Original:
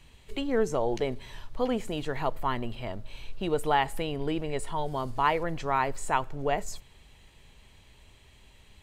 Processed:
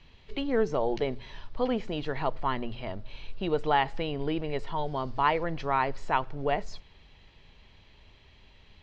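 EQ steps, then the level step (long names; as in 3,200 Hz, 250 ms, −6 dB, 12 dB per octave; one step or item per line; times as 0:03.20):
Butterworth low-pass 5,400 Hz 36 dB per octave
mains-hum notches 60/120 Hz
0.0 dB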